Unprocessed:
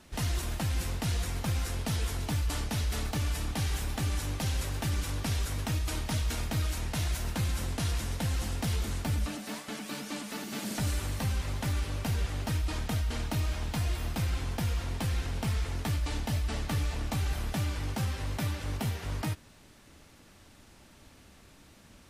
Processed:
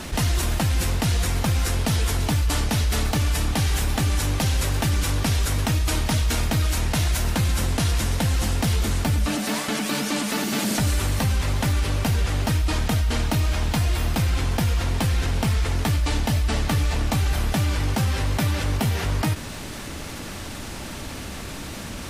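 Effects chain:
envelope flattener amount 50%
level +7.5 dB

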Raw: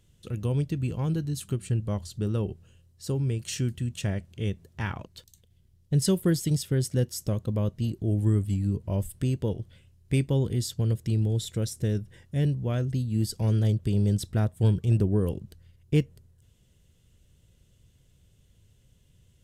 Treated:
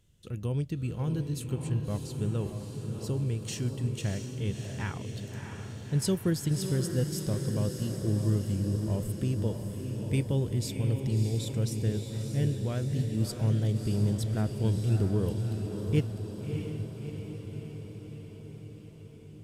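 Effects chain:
feedback delay with all-pass diffusion 636 ms, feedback 67%, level −6 dB
level −4 dB

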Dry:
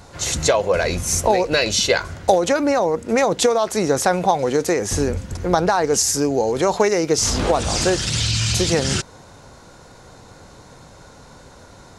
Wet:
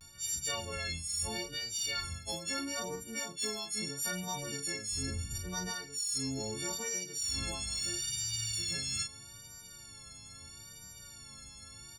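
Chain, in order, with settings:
every partial snapped to a pitch grid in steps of 4 semitones
guitar amp tone stack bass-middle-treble 6-0-2
in parallel at −3.5 dB: soft clipping −25.5 dBFS, distortion −9 dB
on the sum: pitch vibrato 0.76 Hz 70 cents
reversed playback
downward compressor 16 to 1, threshold −34 dBFS, peak gain reduction 19 dB
reversed playback
double-tracking delay 37 ms −5.5 dB

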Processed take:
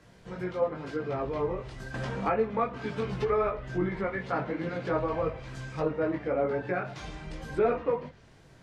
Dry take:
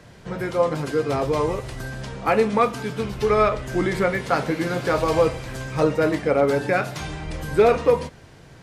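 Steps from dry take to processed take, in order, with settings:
multi-voice chorus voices 4, 0.83 Hz, delay 19 ms, depth 3.2 ms
treble cut that deepens with the level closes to 2,000 Hz, closed at −21 dBFS
0:01.94–0:03.47: multiband upward and downward compressor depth 70%
level −6 dB

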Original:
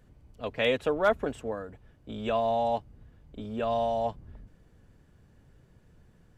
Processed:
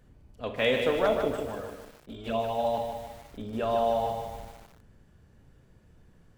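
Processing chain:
four-comb reverb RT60 0.6 s, combs from 28 ms, DRR 6.5 dB
0:01.05–0:02.65: flanger swept by the level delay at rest 6.6 ms, full sweep at −23 dBFS
feedback echo at a low word length 151 ms, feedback 55%, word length 8 bits, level −6 dB

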